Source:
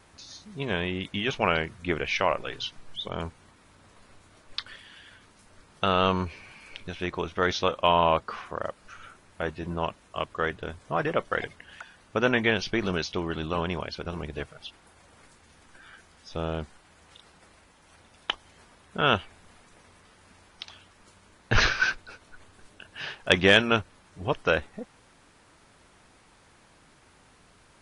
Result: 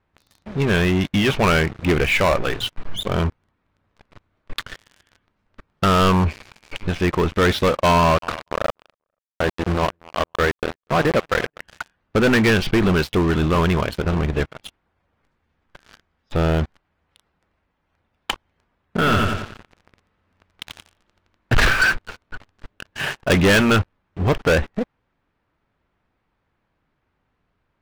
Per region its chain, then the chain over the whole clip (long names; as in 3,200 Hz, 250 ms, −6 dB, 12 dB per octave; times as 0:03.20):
0:07.98–0:11.60: variable-slope delta modulation 64 kbit/s + centre clipping without the shift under −31.5 dBFS + repeating echo 242 ms, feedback 36%, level −23 dB
0:18.97–0:21.53: gain into a clipping stage and back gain 27.5 dB + repeating echo 89 ms, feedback 55%, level −3.5 dB
whole clip: low-pass filter 2,700 Hz 12 dB per octave; low-shelf EQ 190 Hz +5.5 dB; leveller curve on the samples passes 5; level −5 dB